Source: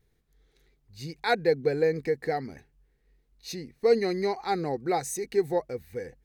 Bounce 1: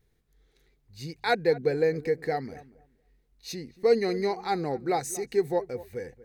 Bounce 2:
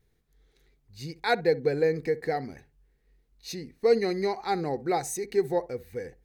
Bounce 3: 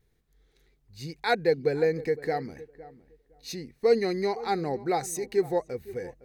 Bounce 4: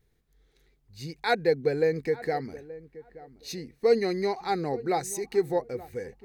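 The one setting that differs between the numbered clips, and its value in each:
darkening echo, time: 235, 63, 511, 876 ms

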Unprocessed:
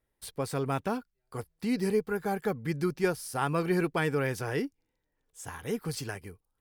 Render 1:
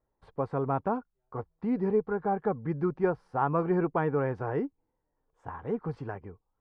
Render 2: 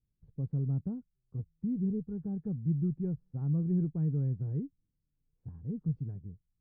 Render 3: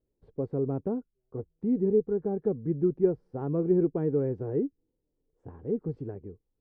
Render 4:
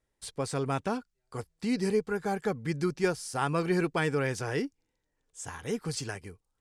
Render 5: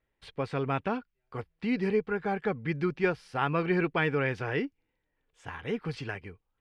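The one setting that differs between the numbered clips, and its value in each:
synth low-pass, frequency: 1000, 160, 400, 7600, 2700 Hz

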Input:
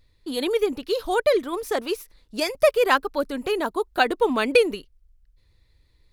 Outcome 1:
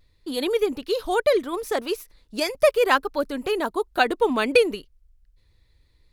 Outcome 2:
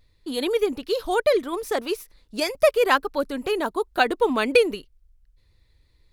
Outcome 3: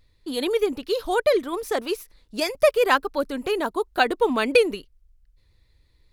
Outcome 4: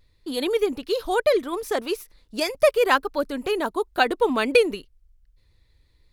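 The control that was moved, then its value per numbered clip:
vibrato, rate: 0.67, 2.4, 7.1, 1 Hz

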